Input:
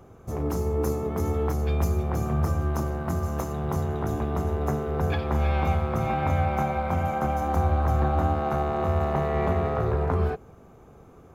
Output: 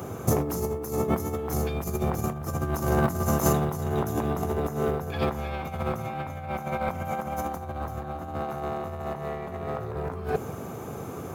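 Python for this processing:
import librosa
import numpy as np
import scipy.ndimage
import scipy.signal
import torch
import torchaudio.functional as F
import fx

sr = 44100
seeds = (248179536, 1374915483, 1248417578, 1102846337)

y = scipy.signal.sosfilt(scipy.signal.butter(4, 87.0, 'highpass', fs=sr, output='sos'), x)
y = fx.high_shelf(y, sr, hz=6700.0, db=12.0)
y = fx.over_compress(y, sr, threshold_db=-33.0, ratio=-0.5)
y = y * librosa.db_to_amplitude(6.5)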